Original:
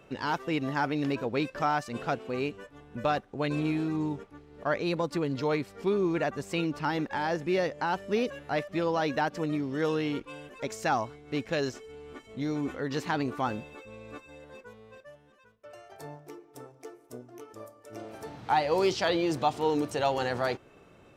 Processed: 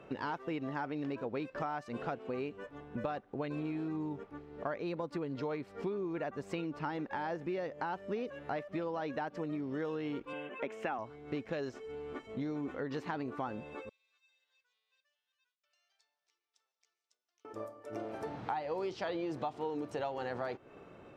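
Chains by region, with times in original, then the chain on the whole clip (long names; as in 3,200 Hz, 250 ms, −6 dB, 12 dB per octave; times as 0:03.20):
0:10.33–0:10.99: high-pass filter 170 Hz 24 dB per octave + high shelf with overshoot 3,600 Hz −7.5 dB, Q 3
0:13.89–0:17.45: downward compressor 3 to 1, threshold −49 dBFS + flat-topped band-pass 5,300 Hz, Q 1.3 + high-shelf EQ 4,700 Hz −8 dB
whole clip: low-pass filter 1,600 Hz 6 dB per octave; low-shelf EQ 130 Hz −8.5 dB; downward compressor 6 to 1, threshold −39 dBFS; level +4 dB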